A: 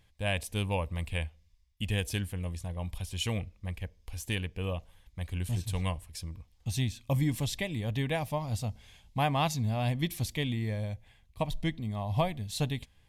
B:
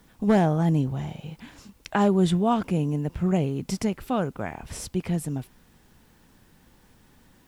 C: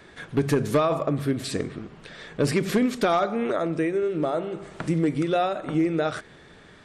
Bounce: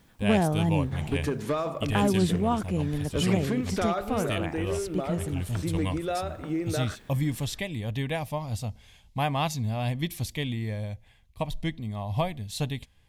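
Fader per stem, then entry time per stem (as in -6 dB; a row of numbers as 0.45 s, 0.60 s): +1.0 dB, -3.5 dB, -7.0 dB; 0.00 s, 0.00 s, 0.75 s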